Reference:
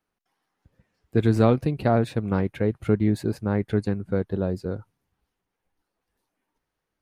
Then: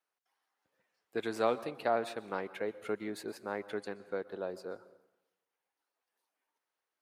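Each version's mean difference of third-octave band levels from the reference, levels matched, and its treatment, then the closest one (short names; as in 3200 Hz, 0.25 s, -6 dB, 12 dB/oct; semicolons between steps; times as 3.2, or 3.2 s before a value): 8.5 dB: HPF 550 Hz 12 dB/oct; plate-style reverb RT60 0.91 s, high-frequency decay 0.75×, pre-delay 0.11 s, DRR 16.5 dB; gain -5 dB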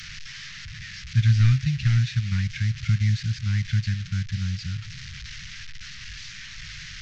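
14.5 dB: delta modulation 32 kbps, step -35 dBFS; Chebyshev band-stop 140–1800 Hz, order 3; gain +6 dB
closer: first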